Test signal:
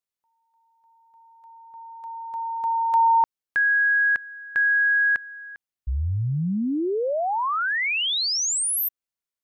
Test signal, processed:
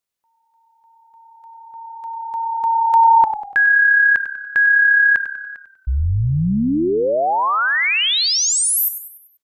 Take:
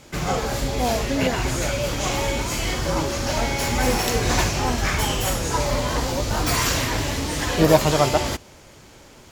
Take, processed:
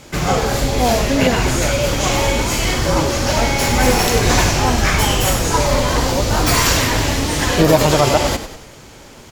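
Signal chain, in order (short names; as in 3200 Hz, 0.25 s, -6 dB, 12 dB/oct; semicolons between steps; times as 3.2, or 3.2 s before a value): frequency-shifting echo 97 ms, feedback 46%, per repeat -34 Hz, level -11 dB; maximiser +7.5 dB; gain -1 dB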